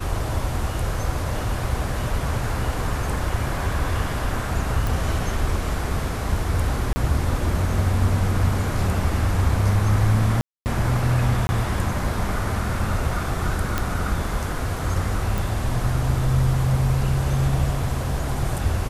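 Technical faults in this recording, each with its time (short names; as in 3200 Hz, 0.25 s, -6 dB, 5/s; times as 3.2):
4.87 pop
6.93–6.96 gap 30 ms
10.41–10.66 gap 0.249 s
11.47–11.49 gap 20 ms
13.78 pop -8 dBFS
15.38 pop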